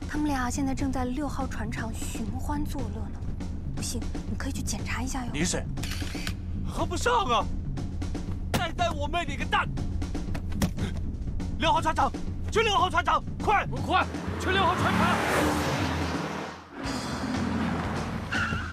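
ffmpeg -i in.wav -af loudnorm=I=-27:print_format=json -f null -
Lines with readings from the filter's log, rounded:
"input_i" : "-29.0",
"input_tp" : "-11.0",
"input_lra" : "6.3",
"input_thresh" : "-39.0",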